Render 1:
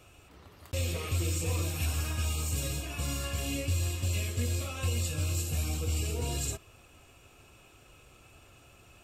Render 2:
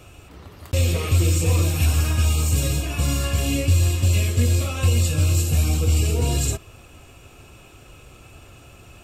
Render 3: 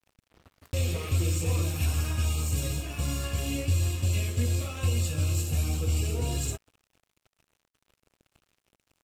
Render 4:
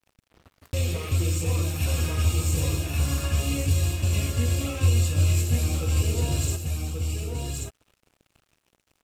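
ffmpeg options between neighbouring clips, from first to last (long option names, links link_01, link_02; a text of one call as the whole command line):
ffmpeg -i in.wav -af "lowshelf=frequency=380:gain=4.5,volume=8.5dB" out.wav
ffmpeg -i in.wav -af "aeval=exprs='sgn(val(0))*max(abs(val(0))-0.0106,0)':channel_layout=same,volume=-7.5dB" out.wav
ffmpeg -i in.wav -af "aecho=1:1:1131:0.668,volume=2dB" out.wav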